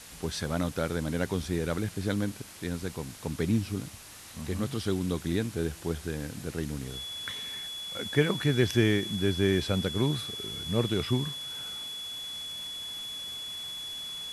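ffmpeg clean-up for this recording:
ffmpeg -i in.wav -af "bandreject=frequency=3400:width=30,afwtdn=0.005" out.wav

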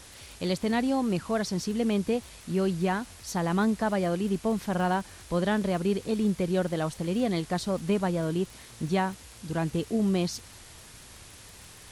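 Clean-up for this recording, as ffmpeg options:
ffmpeg -i in.wav -af "adeclick=threshold=4,afftdn=noise_reduction=25:noise_floor=-49" out.wav

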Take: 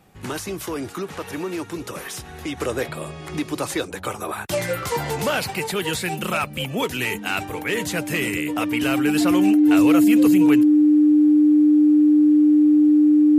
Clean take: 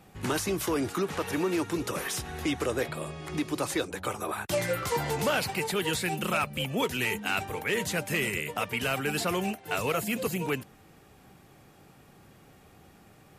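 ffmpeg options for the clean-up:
ffmpeg -i in.wav -af "bandreject=frequency=300:width=30,asetnsamples=nb_out_samples=441:pad=0,asendcmd='2.57 volume volume -4.5dB',volume=0dB" out.wav

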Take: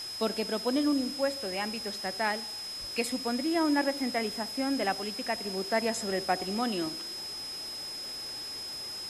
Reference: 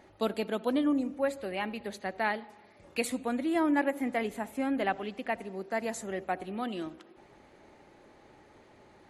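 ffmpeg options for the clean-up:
ffmpeg -i in.wav -filter_complex "[0:a]bandreject=frequency=5100:width=30,asplit=3[link_01][link_02][link_03];[link_01]afade=type=out:start_time=2.8:duration=0.02[link_04];[link_02]highpass=frequency=140:width=0.5412,highpass=frequency=140:width=1.3066,afade=type=in:start_time=2.8:duration=0.02,afade=type=out:start_time=2.92:duration=0.02[link_05];[link_03]afade=type=in:start_time=2.92:duration=0.02[link_06];[link_04][link_05][link_06]amix=inputs=3:normalize=0,afwtdn=0.0056,asetnsamples=nb_out_samples=441:pad=0,asendcmd='5.45 volume volume -4dB',volume=0dB" out.wav

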